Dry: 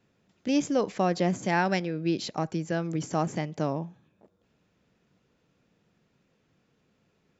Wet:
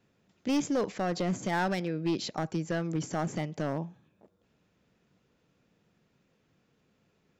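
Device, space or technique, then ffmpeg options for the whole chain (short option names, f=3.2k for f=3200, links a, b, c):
limiter into clipper: -af "alimiter=limit=-17dB:level=0:latency=1:release=22,asoftclip=type=hard:threshold=-22.5dB,volume=-1dB"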